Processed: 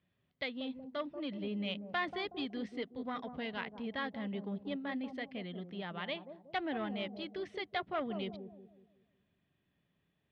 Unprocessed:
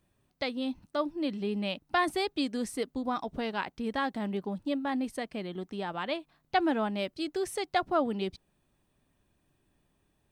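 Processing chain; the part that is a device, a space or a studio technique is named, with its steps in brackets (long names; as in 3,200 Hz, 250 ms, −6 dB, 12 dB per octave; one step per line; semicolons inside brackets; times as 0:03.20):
analogue delay pedal into a guitar amplifier (bucket-brigade delay 185 ms, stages 1,024, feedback 39%, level −8.5 dB; tube saturation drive 21 dB, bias 0.3; loudspeaker in its box 76–4,100 Hz, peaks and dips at 170 Hz +5 dB, 330 Hz −4 dB, 870 Hz −5 dB, 2,000 Hz +7 dB, 3,200 Hz +6 dB)
level −6 dB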